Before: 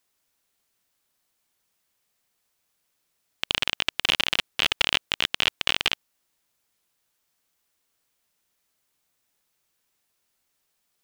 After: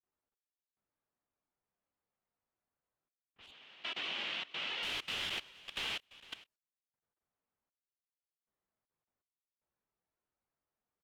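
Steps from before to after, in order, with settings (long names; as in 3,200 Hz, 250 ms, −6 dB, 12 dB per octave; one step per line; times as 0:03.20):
random phases in long frames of 100 ms
low-pass that shuts in the quiet parts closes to 1,200 Hz, open at −27 dBFS
sample-and-hold tremolo 2.6 Hz, depth 90%
single-tap delay 455 ms −14 dB
output level in coarse steps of 19 dB
0:03.51–0:04.83: band-pass filter 190–3,900 Hz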